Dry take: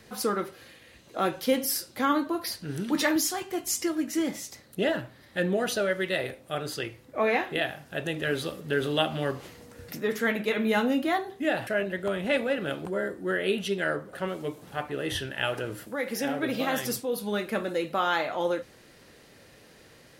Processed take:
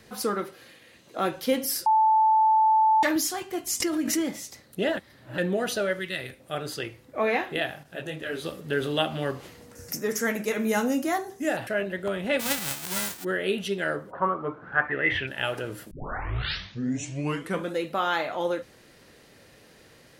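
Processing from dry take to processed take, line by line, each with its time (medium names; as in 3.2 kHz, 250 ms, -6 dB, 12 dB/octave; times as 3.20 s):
0.41–1.19 s: high-pass 120 Hz
1.86–3.03 s: bleep 876 Hz -16.5 dBFS
3.80–4.37 s: swell ahead of each attack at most 45 dB/s
4.97–5.38 s: reverse
5.99–6.40 s: peaking EQ 620 Hz -11 dB 1.7 oct
7.83–8.45 s: detune thickener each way 39 cents
9.75–11.57 s: resonant high shelf 4.7 kHz +8 dB, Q 3
12.39–13.23 s: formants flattened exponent 0.1
14.10–15.26 s: resonant low-pass 950 Hz -> 2.4 kHz, resonance Q 11
15.91 s: tape start 1.87 s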